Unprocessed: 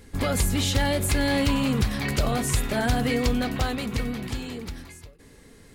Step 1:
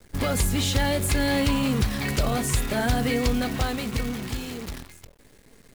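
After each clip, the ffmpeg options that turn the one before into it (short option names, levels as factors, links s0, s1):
-af "acrusher=bits=7:dc=4:mix=0:aa=0.000001"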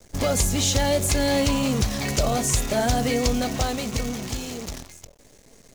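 -af "equalizer=f=630:t=o:w=0.67:g=6,equalizer=f=1600:t=o:w=0.67:g=-3,equalizer=f=6300:t=o:w=0.67:g=10"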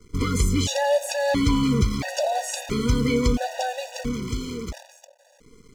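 -af "lowpass=f=3600:p=1,afftfilt=real='re*gt(sin(2*PI*0.74*pts/sr)*(1-2*mod(floor(b*sr/1024/490),2)),0)':imag='im*gt(sin(2*PI*0.74*pts/sr)*(1-2*mod(floor(b*sr/1024/490),2)),0)':win_size=1024:overlap=0.75,volume=1.41"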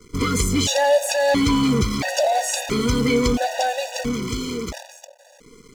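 -filter_complex "[0:a]lowshelf=f=150:g=-9.5,asplit=2[s0][s1];[s1]asoftclip=type=tanh:threshold=0.0355,volume=0.562[s2];[s0][s2]amix=inputs=2:normalize=0,volume=1.5"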